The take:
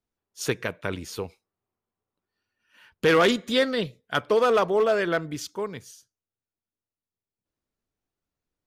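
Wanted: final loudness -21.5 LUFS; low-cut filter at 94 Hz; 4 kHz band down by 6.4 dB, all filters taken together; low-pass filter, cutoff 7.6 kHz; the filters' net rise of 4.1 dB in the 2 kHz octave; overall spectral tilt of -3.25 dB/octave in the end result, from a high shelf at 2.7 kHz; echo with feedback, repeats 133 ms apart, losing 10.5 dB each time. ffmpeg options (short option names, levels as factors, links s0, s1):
-af "highpass=94,lowpass=7600,equalizer=f=2000:t=o:g=9,highshelf=f=2700:g=-4.5,equalizer=f=4000:t=o:g=-8.5,aecho=1:1:133|266|399:0.299|0.0896|0.0269,volume=1.26"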